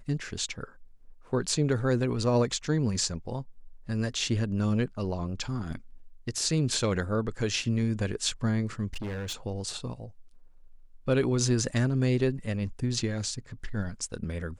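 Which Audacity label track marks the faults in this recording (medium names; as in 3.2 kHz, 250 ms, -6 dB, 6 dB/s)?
8.930000	9.340000	clipped -31.5 dBFS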